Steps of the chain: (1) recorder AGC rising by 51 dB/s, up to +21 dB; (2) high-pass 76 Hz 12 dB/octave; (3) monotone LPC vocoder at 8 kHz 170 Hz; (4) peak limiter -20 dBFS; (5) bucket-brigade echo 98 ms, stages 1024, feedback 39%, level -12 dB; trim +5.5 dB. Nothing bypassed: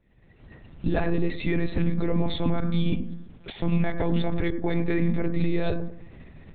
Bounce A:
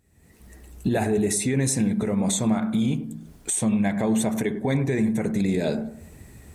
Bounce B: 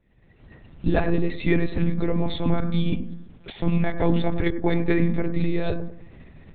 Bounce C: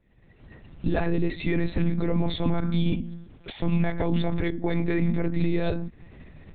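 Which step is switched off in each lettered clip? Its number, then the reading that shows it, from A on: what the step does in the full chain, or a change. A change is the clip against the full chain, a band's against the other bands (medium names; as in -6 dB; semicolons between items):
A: 3, 125 Hz band -3.0 dB; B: 4, crest factor change +4.0 dB; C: 5, echo-to-direct -14.0 dB to none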